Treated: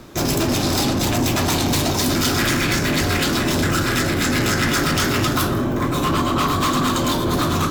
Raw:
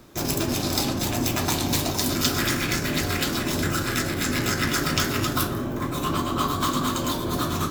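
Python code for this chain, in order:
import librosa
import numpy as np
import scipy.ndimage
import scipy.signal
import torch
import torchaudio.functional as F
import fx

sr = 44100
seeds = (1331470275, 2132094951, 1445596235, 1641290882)

p1 = fx.high_shelf(x, sr, hz=9000.0, db=-6.0)
p2 = fx.fold_sine(p1, sr, drive_db=16, ceiling_db=-5.0)
p3 = p1 + (p2 * 10.0 ** (-10.0 / 20.0))
y = p3 * 10.0 ** (-3.5 / 20.0)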